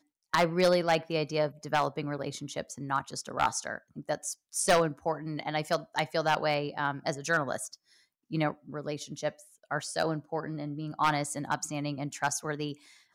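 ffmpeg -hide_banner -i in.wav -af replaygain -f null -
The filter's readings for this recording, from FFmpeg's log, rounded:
track_gain = +10.4 dB
track_peak = 0.210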